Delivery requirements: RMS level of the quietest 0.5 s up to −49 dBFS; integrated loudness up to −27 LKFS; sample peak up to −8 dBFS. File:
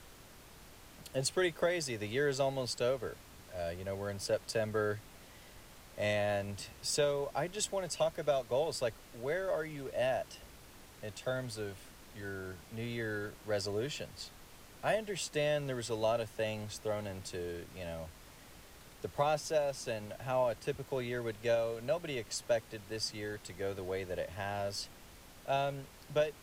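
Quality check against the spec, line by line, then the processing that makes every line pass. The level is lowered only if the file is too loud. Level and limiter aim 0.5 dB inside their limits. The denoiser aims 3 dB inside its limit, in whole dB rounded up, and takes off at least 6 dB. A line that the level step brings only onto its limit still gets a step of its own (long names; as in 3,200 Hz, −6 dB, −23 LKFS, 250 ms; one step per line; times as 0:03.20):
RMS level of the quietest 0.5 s −55 dBFS: in spec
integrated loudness −36.0 LKFS: in spec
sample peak −20.0 dBFS: in spec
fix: no processing needed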